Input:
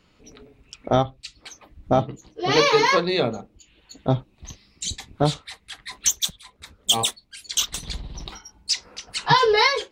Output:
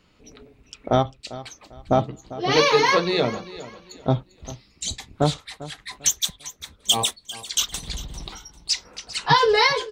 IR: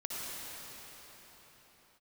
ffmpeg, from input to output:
-af "aecho=1:1:397|794|1191:0.15|0.0449|0.0135"

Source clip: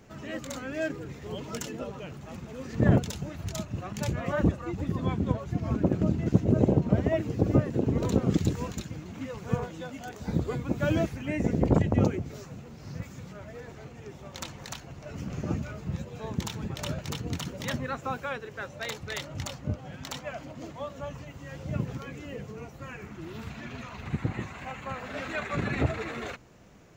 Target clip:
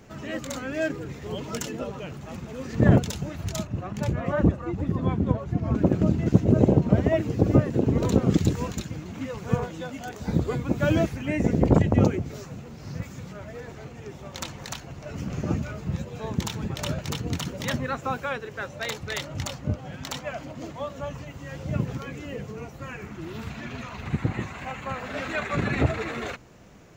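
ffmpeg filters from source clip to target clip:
ffmpeg -i in.wav -filter_complex "[0:a]asettb=1/sr,asplit=3[link_01][link_02][link_03];[link_01]atrim=end=3.674[link_04];[link_02]atrim=start=3.67:end=5.75,asetpts=PTS-STARTPTS,afade=type=in:duration=0.004:curve=qsin,afade=type=out:start_time=2.076:duration=0.004:curve=qsin,highshelf=frequency=2400:gain=-9.5[link_05];[link_03]atrim=start=5.746[link_06];[link_04][link_05]acrossfade=duration=0.004:curve1=hsin:curve2=qsin[link_07];[link_07][link_06]acrossfade=duration=0.004:curve1=qsin:curve2=hsin,volume=4dB" out.wav

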